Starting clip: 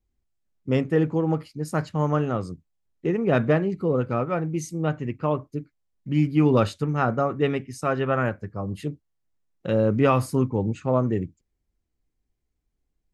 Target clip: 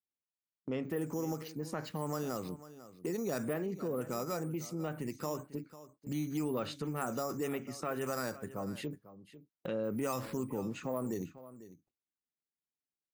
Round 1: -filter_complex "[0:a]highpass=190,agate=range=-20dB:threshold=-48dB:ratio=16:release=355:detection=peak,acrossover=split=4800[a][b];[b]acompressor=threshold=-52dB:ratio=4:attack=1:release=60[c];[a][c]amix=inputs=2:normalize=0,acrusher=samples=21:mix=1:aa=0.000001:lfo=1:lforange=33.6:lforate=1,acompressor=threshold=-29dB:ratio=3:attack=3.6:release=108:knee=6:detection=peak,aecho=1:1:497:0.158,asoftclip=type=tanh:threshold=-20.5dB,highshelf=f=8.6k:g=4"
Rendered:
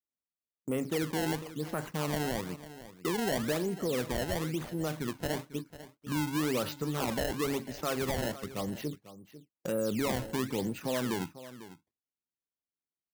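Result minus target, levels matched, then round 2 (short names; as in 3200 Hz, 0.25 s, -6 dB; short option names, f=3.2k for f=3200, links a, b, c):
decimation with a swept rate: distortion +14 dB; compressor: peak gain reduction -4 dB
-filter_complex "[0:a]highpass=190,agate=range=-20dB:threshold=-48dB:ratio=16:release=355:detection=peak,acrossover=split=4800[a][b];[b]acompressor=threshold=-52dB:ratio=4:attack=1:release=60[c];[a][c]amix=inputs=2:normalize=0,acrusher=samples=4:mix=1:aa=0.000001:lfo=1:lforange=6.4:lforate=1,acompressor=threshold=-36dB:ratio=3:attack=3.6:release=108:knee=6:detection=peak,aecho=1:1:497:0.158,asoftclip=type=tanh:threshold=-20.5dB,highshelf=f=8.6k:g=4"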